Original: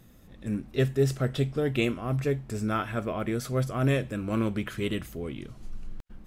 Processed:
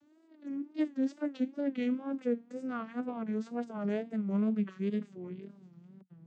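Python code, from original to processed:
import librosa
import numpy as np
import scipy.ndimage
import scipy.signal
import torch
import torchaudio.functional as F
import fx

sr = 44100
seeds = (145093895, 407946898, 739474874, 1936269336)

y = fx.vocoder_glide(x, sr, note=63, semitones=-10)
y = fx.wow_flutter(y, sr, seeds[0], rate_hz=2.1, depth_cents=120.0)
y = y * librosa.db_to_amplitude(-5.0)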